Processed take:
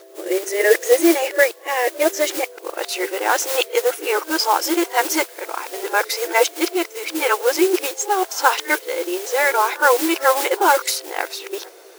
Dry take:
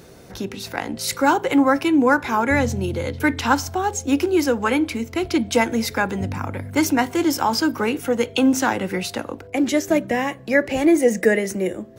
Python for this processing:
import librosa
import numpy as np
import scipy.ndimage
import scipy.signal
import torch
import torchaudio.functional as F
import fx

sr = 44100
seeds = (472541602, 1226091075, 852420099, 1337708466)

y = x[::-1].copy()
y = fx.mod_noise(y, sr, seeds[0], snr_db=14)
y = fx.brickwall_highpass(y, sr, low_hz=320.0)
y = F.gain(torch.from_numpy(y), 3.0).numpy()